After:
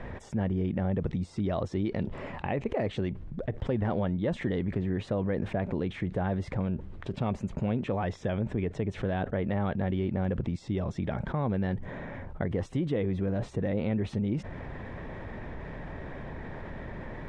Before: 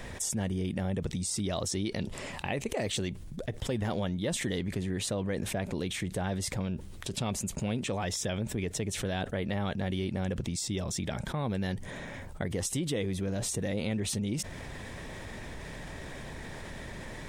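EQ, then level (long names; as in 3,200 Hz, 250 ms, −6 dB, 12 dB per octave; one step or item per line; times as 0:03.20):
low-pass filter 1,600 Hz 12 dB per octave
+3.0 dB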